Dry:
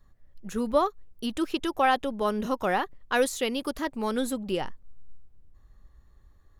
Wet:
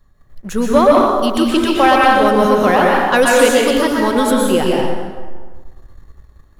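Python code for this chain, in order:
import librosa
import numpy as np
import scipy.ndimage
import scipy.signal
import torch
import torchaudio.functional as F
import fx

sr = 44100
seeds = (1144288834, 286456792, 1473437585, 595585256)

y = fx.rev_plate(x, sr, seeds[0], rt60_s=1.5, hf_ratio=0.65, predelay_ms=105, drr_db=-3.0)
y = fx.leveller(y, sr, passes=1)
y = y * 10.0 ** (7.5 / 20.0)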